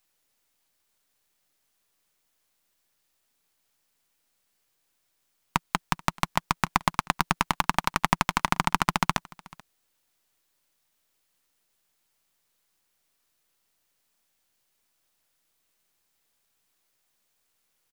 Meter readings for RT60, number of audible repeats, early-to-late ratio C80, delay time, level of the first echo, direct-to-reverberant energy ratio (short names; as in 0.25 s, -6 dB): none, 1, none, 0.434 s, -23.5 dB, none